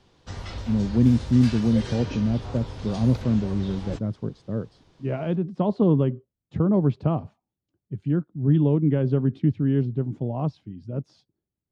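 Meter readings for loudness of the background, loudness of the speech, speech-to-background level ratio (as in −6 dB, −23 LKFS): −36.0 LKFS, −24.0 LKFS, 12.0 dB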